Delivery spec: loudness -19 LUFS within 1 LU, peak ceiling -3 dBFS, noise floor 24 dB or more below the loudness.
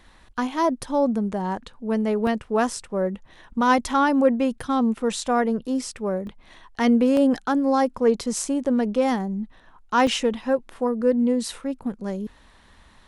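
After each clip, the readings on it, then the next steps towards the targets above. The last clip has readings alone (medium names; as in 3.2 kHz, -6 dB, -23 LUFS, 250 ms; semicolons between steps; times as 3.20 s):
dropouts 4; longest dropout 1.4 ms; loudness -23.0 LUFS; peak level -8.0 dBFS; loudness target -19.0 LUFS
-> interpolate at 2.27/6.27/7.17/10.07 s, 1.4 ms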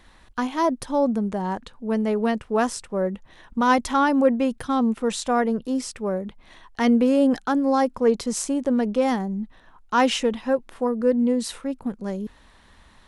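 dropouts 0; loudness -23.0 LUFS; peak level -8.0 dBFS; loudness target -19.0 LUFS
-> trim +4 dB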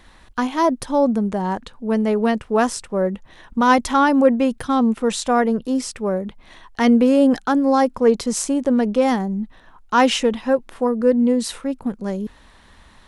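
loudness -19.0 LUFS; peak level -4.0 dBFS; noise floor -50 dBFS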